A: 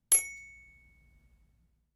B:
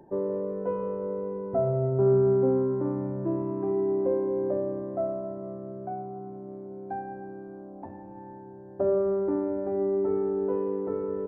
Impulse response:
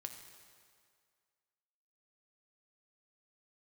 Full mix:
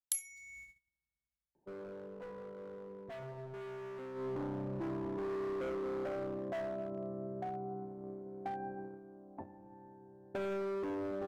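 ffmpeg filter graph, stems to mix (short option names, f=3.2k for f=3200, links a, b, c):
-filter_complex "[0:a]agate=range=-31dB:threshold=-56dB:ratio=16:detection=peak,tiltshelf=f=1.5k:g=-7.5,volume=2.5dB[a];[1:a]agate=range=-10dB:threshold=-39dB:ratio=16:detection=peak,asoftclip=type=hard:threshold=-29.5dB,adelay=1550,volume=-2dB,afade=t=in:st=4.14:d=0.23:silence=0.237137[b];[a][b]amix=inputs=2:normalize=0,acompressor=threshold=-37dB:ratio=6"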